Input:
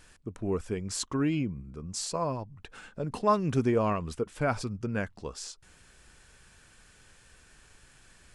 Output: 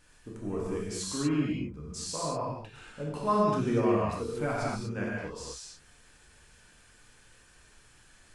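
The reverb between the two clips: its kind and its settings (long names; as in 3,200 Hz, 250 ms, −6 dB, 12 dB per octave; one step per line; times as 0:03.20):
reverb whose tail is shaped and stops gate 270 ms flat, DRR −6 dB
level −7.5 dB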